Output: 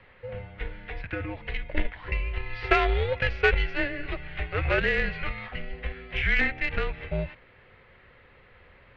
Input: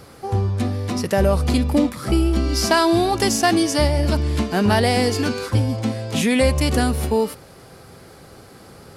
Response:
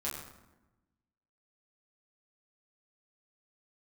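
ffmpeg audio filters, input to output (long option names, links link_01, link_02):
-filter_complex "[0:a]highpass=frequency=160:width_type=q:width=0.5412,highpass=frequency=160:width_type=q:width=1.307,lowpass=frequency=3300:width_type=q:width=0.5176,lowpass=frequency=3300:width_type=q:width=0.7071,lowpass=frequency=3300:width_type=q:width=1.932,afreqshift=-280,asettb=1/sr,asplit=3[link_01][link_02][link_03];[link_01]atrim=end=0.794[link_04];[link_02]atrim=start=0.79:end=1.69,asetpts=PTS-STARTPTS,afade=type=in:duration=0.004:curve=qsin,afade=type=out:start_time=0.896:duration=0.004:curve=qsin,acompressor=threshold=-25dB:ratio=1.5[link_05];[link_03]atrim=start=1.686[link_06];[link_04][link_05]acrossfade=duration=0.004:curve1=hsin:curve2=qsin[link_07];[link_07][link_06]acrossfade=duration=0.004:curve1=qsin:curve2=hsin,aeval=exprs='0.562*(cos(1*acos(clip(val(0)/0.562,-1,1)))-cos(1*PI/2))+0.112*(cos(3*acos(clip(val(0)/0.562,-1,1)))-cos(3*PI/2))':channel_layout=same,equalizer=frequency=125:width_type=o:width=1:gain=-5,equalizer=frequency=250:width_type=o:width=1:gain=-11,equalizer=frequency=500:width_type=o:width=1:gain=4,equalizer=frequency=1000:width_type=o:width=1:gain=-7,equalizer=frequency=2000:width_type=o:width=1:gain=11"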